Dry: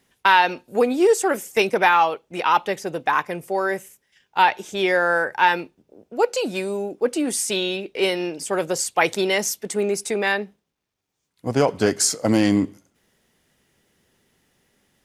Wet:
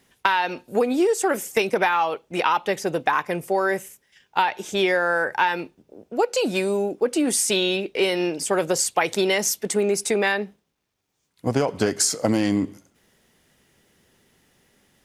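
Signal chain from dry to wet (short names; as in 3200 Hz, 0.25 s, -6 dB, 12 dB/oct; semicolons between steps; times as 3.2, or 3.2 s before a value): compressor 10:1, threshold -20 dBFS, peak gain reduction 10.5 dB; gain +3.5 dB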